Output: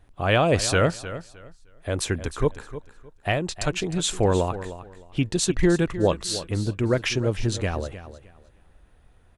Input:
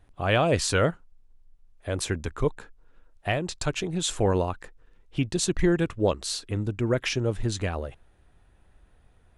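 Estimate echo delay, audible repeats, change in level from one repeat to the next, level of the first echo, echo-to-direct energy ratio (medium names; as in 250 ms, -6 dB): 308 ms, 2, -13.0 dB, -13.5 dB, -13.5 dB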